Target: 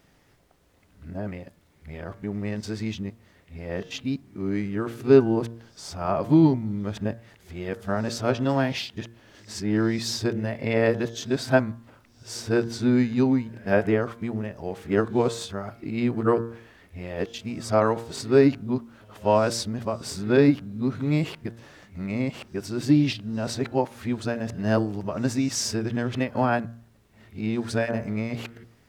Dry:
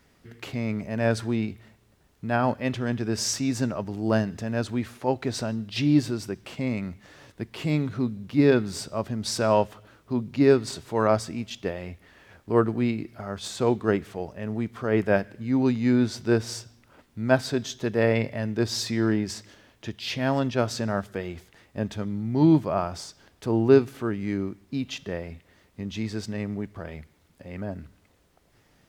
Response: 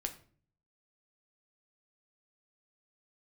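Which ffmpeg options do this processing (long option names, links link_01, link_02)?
-filter_complex "[0:a]areverse,bandreject=frequency=115.6:width_type=h:width=4,bandreject=frequency=231.2:width_type=h:width=4,bandreject=frequency=346.8:width_type=h:width=4,bandreject=frequency=462.4:width_type=h:width=4,bandreject=frequency=578:width_type=h:width=4,bandreject=frequency=693.6:width_type=h:width=4,bandreject=frequency=809.2:width_type=h:width=4,bandreject=frequency=924.8:width_type=h:width=4,bandreject=frequency=1040.4:width_type=h:width=4,bandreject=frequency=1156:width_type=h:width=4,bandreject=frequency=1271.6:width_type=h:width=4,bandreject=frequency=1387.2:width_type=h:width=4,bandreject=frequency=1502.8:width_type=h:width=4,bandreject=frequency=1618.4:width_type=h:width=4,bandreject=frequency=1734:width_type=h:width=4,asplit=2[link_01][link_02];[1:a]atrim=start_sample=2205,lowpass=3200[link_03];[link_02][link_03]afir=irnorm=-1:irlink=0,volume=-16dB[link_04];[link_01][link_04]amix=inputs=2:normalize=0"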